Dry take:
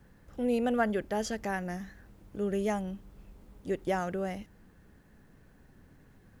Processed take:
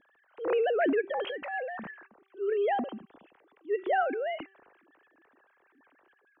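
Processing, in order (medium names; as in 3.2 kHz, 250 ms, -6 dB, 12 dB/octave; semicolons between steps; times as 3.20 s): formants replaced by sine waves; transient shaper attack -8 dB, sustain +8 dB; de-hum 388.5 Hz, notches 7; trim +2.5 dB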